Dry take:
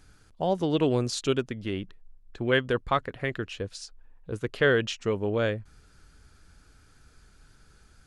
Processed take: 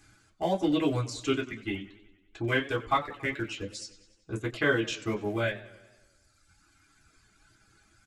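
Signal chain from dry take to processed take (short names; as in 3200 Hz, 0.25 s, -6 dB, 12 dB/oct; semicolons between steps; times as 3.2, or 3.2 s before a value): in parallel at -12 dB: Schmitt trigger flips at -23.5 dBFS; on the sum: de-esser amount 85%; reverb removal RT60 1.8 s; 2.88–3.55 crackle 150/s -53 dBFS; reverb, pre-delay 3 ms, DRR -2.5 dB; downsampling 32000 Hz; warbling echo 94 ms, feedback 60%, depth 109 cents, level -17.5 dB; gain -2.5 dB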